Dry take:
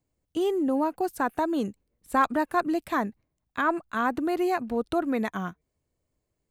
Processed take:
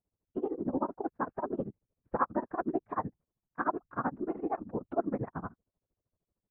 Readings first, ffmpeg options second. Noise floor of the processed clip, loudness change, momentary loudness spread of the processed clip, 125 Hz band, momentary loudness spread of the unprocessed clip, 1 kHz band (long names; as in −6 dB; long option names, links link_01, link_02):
below −85 dBFS, −8.0 dB, 9 LU, 0.0 dB, 10 LU, −7.5 dB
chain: -af "afftfilt=real='hypot(re,im)*cos(2*PI*random(0))':imag='hypot(re,im)*sin(2*PI*random(1))':win_size=512:overlap=0.75,lowpass=frequency=1400:width=0.5412,lowpass=frequency=1400:width=1.3066,tremolo=f=13:d=0.94,volume=2.5dB"